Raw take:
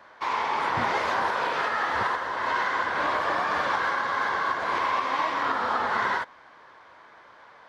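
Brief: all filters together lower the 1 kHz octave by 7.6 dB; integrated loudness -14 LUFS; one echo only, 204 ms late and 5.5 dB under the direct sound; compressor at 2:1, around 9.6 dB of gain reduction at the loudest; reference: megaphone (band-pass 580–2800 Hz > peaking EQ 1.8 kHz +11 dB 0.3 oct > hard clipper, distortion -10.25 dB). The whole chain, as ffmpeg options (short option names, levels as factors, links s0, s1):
-af "equalizer=f=1000:t=o:g=-9,acompressor=threshold=0.00562:ratio=2,highpass=580,lowpass=2800,equalizer=f=1800:t=o:w=0.3:g=11,aecho=1:1:204:0.531,asoftclip=type=hard:threshold=0.0158,volume=15.8"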